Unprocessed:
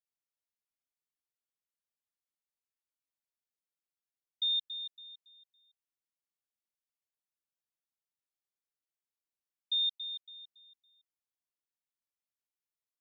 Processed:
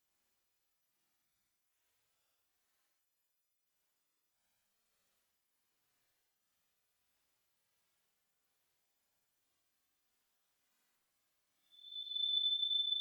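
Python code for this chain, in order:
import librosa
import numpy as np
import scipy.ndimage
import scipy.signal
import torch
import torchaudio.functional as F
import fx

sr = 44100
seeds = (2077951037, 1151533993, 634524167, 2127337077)

y = fx.freq_snap(x, sr, grid_st=3)
y = fx.dmg_crackle(y, sr, seeds[0], per_s=180.0, level_db=-59.0)
y = fx.paulstretch(y, sr, seeds[1], factor=13.0, window_s=0.05, from_s=3.48)
y = y * 10.0 ** (-5.0 / 20.0)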